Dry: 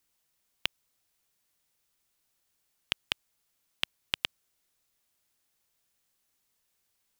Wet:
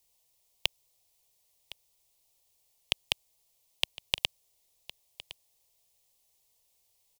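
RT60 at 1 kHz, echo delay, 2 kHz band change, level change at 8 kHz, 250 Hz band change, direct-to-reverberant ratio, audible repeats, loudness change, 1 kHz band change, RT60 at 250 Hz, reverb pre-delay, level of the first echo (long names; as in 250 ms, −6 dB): no reverb audible, 1,061 ms, 0.0 dB, +5.0 dB, −4.5 dB, no reverb audible, 1, +2.5 dB, +0.5 dB, no reverb audible, no reverb audible, −17.5 dB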